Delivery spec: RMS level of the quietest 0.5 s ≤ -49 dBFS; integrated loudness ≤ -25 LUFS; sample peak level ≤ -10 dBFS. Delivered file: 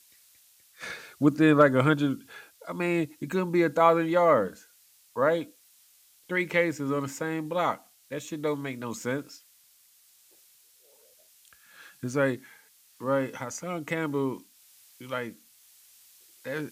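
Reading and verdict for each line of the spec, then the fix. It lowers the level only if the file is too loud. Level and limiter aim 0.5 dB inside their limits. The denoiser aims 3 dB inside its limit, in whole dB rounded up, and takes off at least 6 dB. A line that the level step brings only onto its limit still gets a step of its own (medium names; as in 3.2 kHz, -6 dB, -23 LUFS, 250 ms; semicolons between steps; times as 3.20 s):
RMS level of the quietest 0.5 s -61 dBFS: pass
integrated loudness -27.0 LUFS: pass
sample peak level -7.0 dBFS: fail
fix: peak limiter -10.5 dBFS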